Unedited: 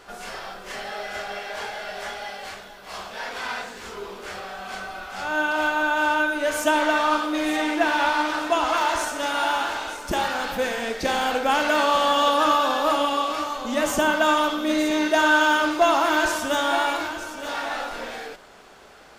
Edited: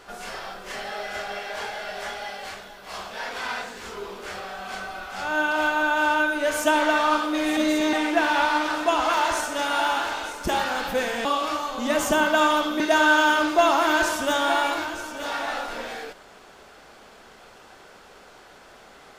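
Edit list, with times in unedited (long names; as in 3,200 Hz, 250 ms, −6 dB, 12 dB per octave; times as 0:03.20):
0:10.89–0:13.12: remove
0:14.67–0:15.03: move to 0:07.57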